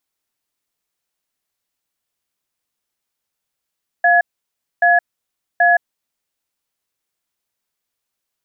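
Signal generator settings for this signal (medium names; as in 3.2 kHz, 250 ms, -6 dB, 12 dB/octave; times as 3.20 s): cadence 700 Hz, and 1.69 kHz, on 0.17 s, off 0.61 s, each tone -12 dBFS 1.90 s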